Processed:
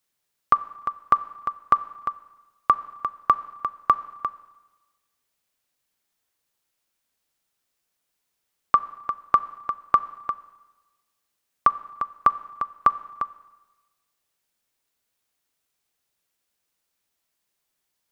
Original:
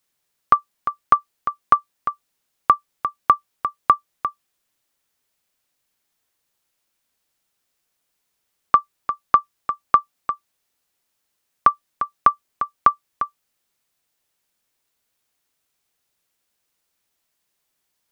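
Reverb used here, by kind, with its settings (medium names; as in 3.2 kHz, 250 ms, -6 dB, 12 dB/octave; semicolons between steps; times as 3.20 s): Schroeder reverb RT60 1.2 s, combs from 29 ms, DRR 16.5 dB; trim -3.5 dB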